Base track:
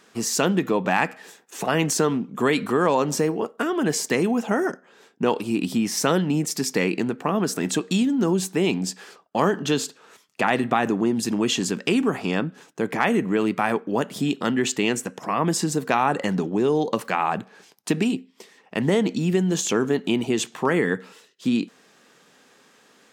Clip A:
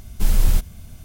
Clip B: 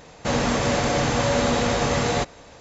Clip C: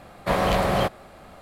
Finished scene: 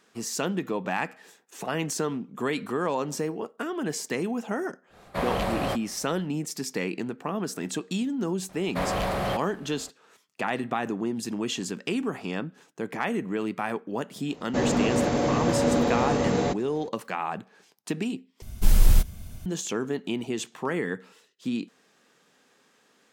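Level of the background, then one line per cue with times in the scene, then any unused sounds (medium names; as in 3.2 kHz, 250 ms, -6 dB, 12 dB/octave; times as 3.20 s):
base track -7.5 dB
4.88 s: add C -6.5 dB, fades 0.10 s
8.49 s: add C -11 dB + waveshaping leveller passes 2
14.29 s: add B -9.5 dB + peaking EQ 300 Hz +11.5 dB 2.4 oct
18.42 s: replace with A -1 dB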